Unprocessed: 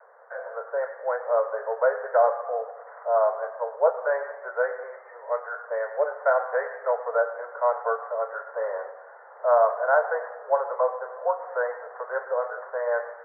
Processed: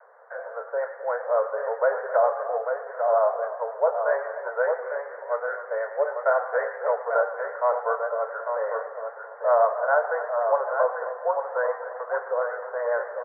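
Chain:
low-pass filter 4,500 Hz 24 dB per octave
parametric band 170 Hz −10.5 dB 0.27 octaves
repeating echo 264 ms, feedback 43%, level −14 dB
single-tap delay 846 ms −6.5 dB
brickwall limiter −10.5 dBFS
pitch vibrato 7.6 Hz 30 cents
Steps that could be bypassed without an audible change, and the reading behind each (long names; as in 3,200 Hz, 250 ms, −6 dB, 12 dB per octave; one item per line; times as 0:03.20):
low-pass filter 4,500 Hz: nothing at its input above 1,900 Hz
parametric band 170 Hz: nothing at its input below 380 Hz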